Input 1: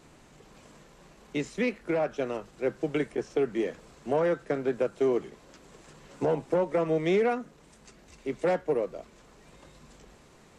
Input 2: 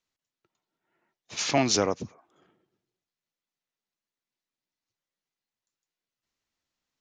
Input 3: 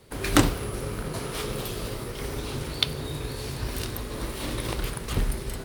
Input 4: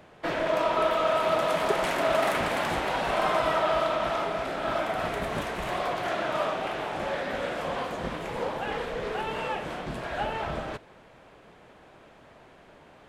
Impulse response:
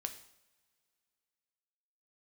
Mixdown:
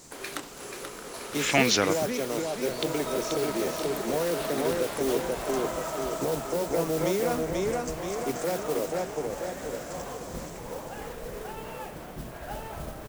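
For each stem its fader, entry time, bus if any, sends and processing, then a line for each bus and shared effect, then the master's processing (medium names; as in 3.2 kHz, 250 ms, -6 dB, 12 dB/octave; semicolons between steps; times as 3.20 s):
+1.0 dB, 0.00 s, bus A, no send, echo send -6 dB, resonant high shelf 4.1 kHz +12 dB, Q 1.5
-1.0 dB, 0.00 s, no bus, no send, no echo send, level-controlled noise filter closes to 340 Hz, open at -21.5 dBFS; high-order bell 2.3 kHz +8.5 dB
-3.5 dB, 0.00 s, no bus, no send, echo send -6.5 dB, compression 6:1, threshold -27 dBFS, peak gain reduction 14 dB; high-pass 400 Hz 12 dB/octave
-19.5 dB, 2.30 s, bus A, no send, no echo send, tilt EQ -2 dB/octave; level rider gain up to 11 dB
bus A: 0.0 dB, modulation noise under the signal 13 dB; peak limiter -19.5 dBFS, peak gain reduction 7 dB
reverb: none
echo: feedback delay 483 ms, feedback 53%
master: none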